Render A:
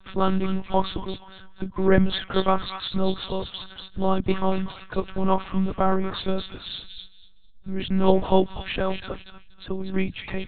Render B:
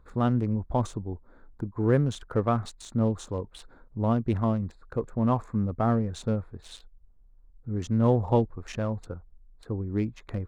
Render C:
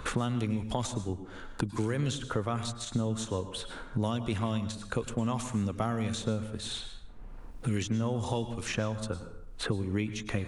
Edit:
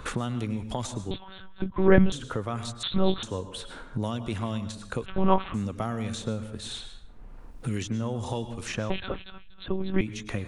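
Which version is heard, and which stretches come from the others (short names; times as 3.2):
C
1.11–2.12 from A
2.83–3.23 from A
5.06–5.54 from A
8.9–10.01 from A
not used: B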